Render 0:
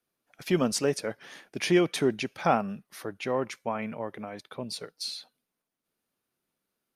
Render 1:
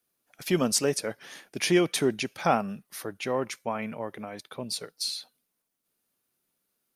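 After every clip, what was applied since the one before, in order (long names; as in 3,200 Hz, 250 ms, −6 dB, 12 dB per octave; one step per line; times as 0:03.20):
high-shelf EQ 5,600 Hz +9.5 dB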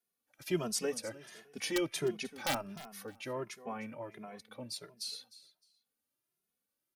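wrap-around overflow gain 11 dB
repeating echo 306 ms, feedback 22%, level −17 dB
barber-pole flanger 2.4 ms +1.4 Hz
level −6.5 dB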